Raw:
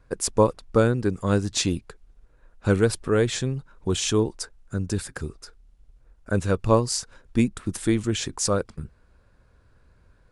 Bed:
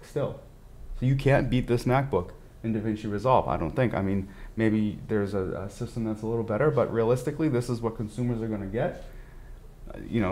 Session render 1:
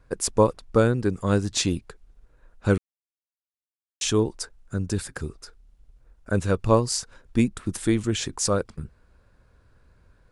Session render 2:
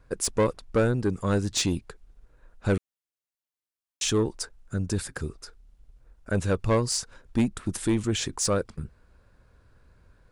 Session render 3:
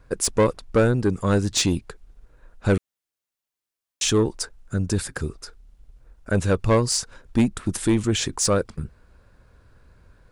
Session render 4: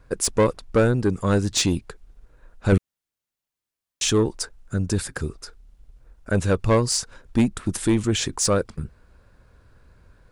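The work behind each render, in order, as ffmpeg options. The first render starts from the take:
ffmpeg -i in.wav -filter_complex "[0:a]asplit=3[link_01][link_02][link_03];[link_01]atrim=end=2.78,asetpts=PTS-STARTPTS,afade=type=out:start_time=2.776:duration=0.004:curve=hsin[link_04];[link_02]atrim=start=2.78:end=4.01,asetpts=PTS-STARTPTS,volume=0[link_05];[link_03]atrim=start=4.01,asetpts=PTS-STARTPTS,afade=type=in:duration=0.004:curve=hsin[link_06];[link_04][link_05][link_06]concat=n=3:v=0:a=1" out.wav
ffmpeg -i in.wav -af "asoftclip=type=tanh:threshold=-16dB" out.wav
ffmpeg -i in.wav -af "volume=4.5dB" out.wav
ffmpeg -i in.wav -filter_complex "[0:a]asettb=1/sr,asplit=3[link_01][link_02][link_03];[link_01]atrim=end=2.724[link_04];[link_02]atrim=start=2.72:end=4.03,asetpts=PTS-STARTPTS,afade=type=in:duration=0.004:curve=qsin,afade=type=out:start_time=1.306:duration=0.004:curve=qsin,bass=frequency=250:gain=6,treble=frequency=4000:gain=-1[link_05];[link_03]atrim=start=4.026[link_06];[link_04][link_05]acrossfade=duration=0.004:curve1=hsin:curve2=qsin[link_07];[link_07][link_06]acrossfade=duration=0.004:curve1=qsin:curve2=hsin" out.wav

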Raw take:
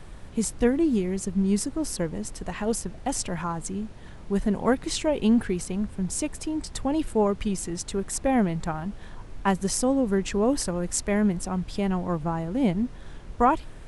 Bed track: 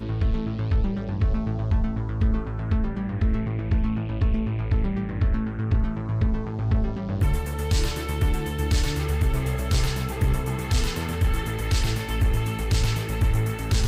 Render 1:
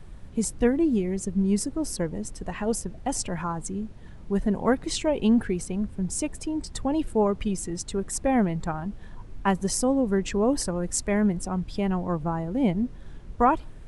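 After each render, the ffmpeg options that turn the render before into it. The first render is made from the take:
ffmpeg -i in.wav -af "afftdn=noise_reduction=7:noise_floor=-42" out.wav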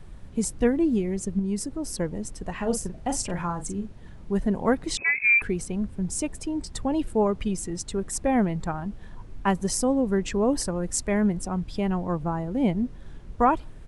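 ffmpeg -i in.wav -filter_complex "[0:a]asettb=1/sr,asplit=3[link_01][link_02][link_03];[link_01]atrim=end=1.394[link_04];[link_02]atrim=start=1.39:end=1.94,asetpts=PTS-STARTPTS,afade=type=in:duration=0.004:curve=qsin,afade=type=out:start_time=0.546:duration=0.004:curve=qsin,acompressor=threshold=-31dB:ratio=1.5:attack=3.2:release=140:knee=1:detection=peak[link_05];[link_03]atrim=start=1.936[link_06];[link_04][link_05]acrossfade=duration=0.004:curve1=hsin:curve2=qsin[link_07];[link_07][link_06]acrossfade=duration=0.004:curve1=qsin:curve2=hsin,asplit=3[link_08][link_09][link_10];[link_08]afade=type=out:start_time=2.59:duration=0.02[link_11];[link_09]asplit=2[link_12][link_13];[link_13]adelay=40,volume=-8dB[link_14];[link_12][link_14]amix=inputs=2:normalize=0,afade=type=in:start_time=2.59:duration=0.02,afade=type=out:start_time=3.85:duration=0.02[link_15];[link_10]afade=type=in:start_time=3.85:duration=0.02[link_16];[link_11][link_15][link_16]amix=inputs=3:normalize=0,asettb=1/sr,asplit=3[link_17][link_18][link_19];[link_17]atrim=end=4.974[link_20];[link_18]atrim=start=4.97:end=5.42,asetpts=PTS-STARTPTS,afade=type=in:duration=0.004:curve=qsin,afade=type=out:start_time=0.446:duration=0.004:curve=qsin,lowpass=frequency=2200:width_type=q:width=0.5098,lowpass=frequency=2200:width_type=q:width=0.6013,lowpass=frequency=2200:width_type=q:width=0.9,lowpass=frequency=2200:width_type=q:width=2.563,afreqshift=-2600[link_21];[link_19]atrim=start=5.416[link_22];[link_20][link_21]acrossfade=duration=0.004:curve1=hsin:curve2=qsin[link_23];[link_23][link_22]acrossfade=duration=0.004:curve1=qsin:curve2=hsin" out.wav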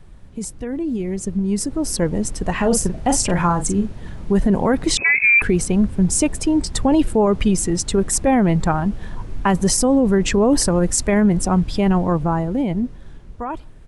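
ffmpeg -i in.wav -af "alimiter=limit=-20dB:level=0:latency=1:release=12,dynaudnorm=framelen=150:gausssize=21:maxgain=12dB" out.wav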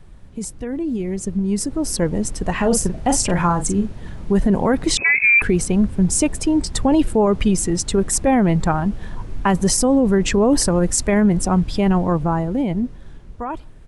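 ffmpeg -i in.wav -af anull out.wav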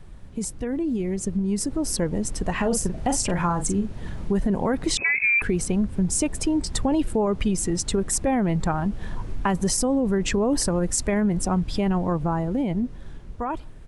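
ffmpeg -i in.wav -af "acompressor=threshold=-24dB:ratio=2" out.wav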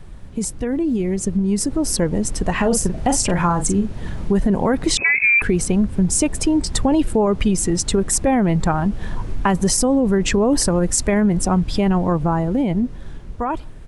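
ffmpeg -i in.wav -af "volume=5.5dB" out.wav

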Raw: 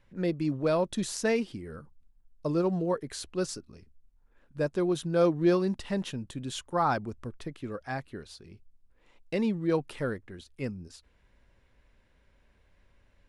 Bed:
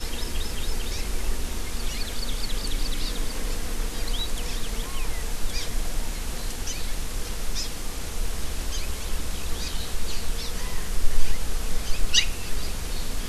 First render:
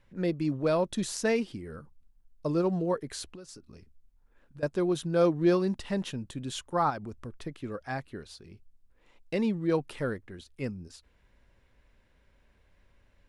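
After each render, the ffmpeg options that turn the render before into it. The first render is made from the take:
ffmpeg -i in.wav -filter_complex "[0:a]asettb=1/sr,asplit=3[link_01][link_02][link_03];[link_01]atrim=end=3.354[link_04];[link_02]atrim=start=3.35:end=4.63,asetpts=PTS-STARTPTS,afade=type=in:duration=0.004:curve=qsin,afade=type=out:start_time=1.276:duration=0.004:curve=qsin,acompressor=threshold=-43dB:ratio=10:attack=3.2:release=140:knee=1:detection=peak[link_05];[link_03]atrim=start=4.626[link_06];[link_04][link_05]acrossfade=duration=0.004:curve1=hsin:curve2=qsin[link_07];[link_07][link_06]acrossfade=duration=0.004:curve1=qsin:curve2=hsin,asplit=3[link_08][link_09][link_10];[link_08]afade=type=out:start_time=6.89:duration=0.02[link_11];[link_09]acompressor=threshold=-36dB:ratio=2.5:attack=3.2:release=140:knee=1:detection=peak,afade=type=in:start_time=6.89:duration=0.02,afade=type=out:start_time=7.4:duration=0.02[link_12];[link_10]afade=type=in:start_time=7.4:duration=0.02[link_13];[link_11][link_12][link_13]amix=inputs=3:normalize=0" out.wav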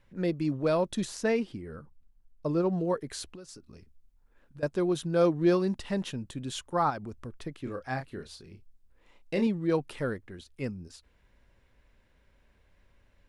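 ffmpeg -i in.wav -filter_complex "[0:a]asettb=1/sr,asplit=3[link_01][link_02][link_03];[link_01]atrim=end=1.054[link_04];[link_02]atrim=start=1.05:end=2.78,asetpts=PTS-STARTPTS,afade=type=in:duration=0.004:curve=qsin,afade=type=out:start_time=1.726:duration=0.004:curve=qsin,highshelf=frequency=3700:gain=-7[link_05];[link_03]atrim=start=2.776[link_06];[link_04][link_05]acrossfade=duration=0.004:curve1=hsin:curve2=qsin[link_07];[link_07][link_06]acrossfade=duration=0.004:curve1=qsin:curve2=hsin,asettb=1/sr,asplit=3[link_08][link_09][link_10];[link_08]atrim=end=7.624[link_11];[link_09]atrim=start=7.62:end=9.47,asetpts=PTS-STARTPTS,afade=type=in:duration=0.004:curve=qsin,afade=type=out:start_time=1.846:duration=0.004:curve=qsin,asplit=2[link_12][link_13];[link_13]adelay=31,volume=-7dB[link_14];[link_12][link_14]amix=inputs=2:normalize=0,atrim=end_sample=81585[link_15];[link_10]atrim=start=9.466[link_16];[link_11][link_15]acrossfade=duration=0.004:curve1=hsin:curve2=qsin[link_17];[link_17][link_16]acrossfade=duration=0.004:curve1=qsin:curve2=hsin" out.wav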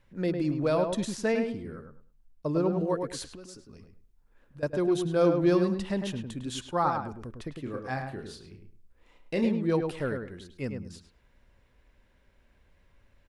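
ffmpeg -i in.wav -filter_complex "[0:a]asplit=2[link_01][link_02];[link_02]adelay=104,lowpass=frequency=2000:poles=1,volume=-5dB,asplit=2[link_03][link_04];[link_04]adelay=104,lowpass=frequency=2000:poles=1,volume=0.23,asplit=2[link_05][link_06];[link_06]adelay=104,lowpass=frequency=2000:poles=1,volume=0.23[link_07];[link_01][link_03][link_05][link_07]amix=inputs=4:normalize=0" out.wav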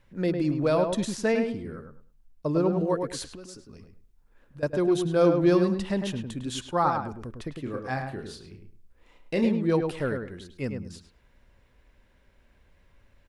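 ffmpeg -i in.wav -af "volume=2.5dB" out.wav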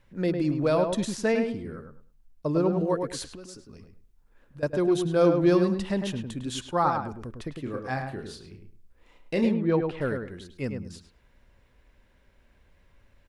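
ffmpeg -i in.wav -filter_complex "[0:a]asplit=3[link_01][link_02][link_03];[link_01]afade=type=out:start_time=9.53:duration=0.02[link_04];[link_02]lowpass=3000,afade=type=in:start_time=9.53:duration=0.02,afade=type=out:start_time=10:duration=0.02[link_05];[link_03]afade=type=in:start_time=10:duration=0.02[link_06];[link_04][link_05][link_06]amix=inputs=3:normalize=0" out.wav

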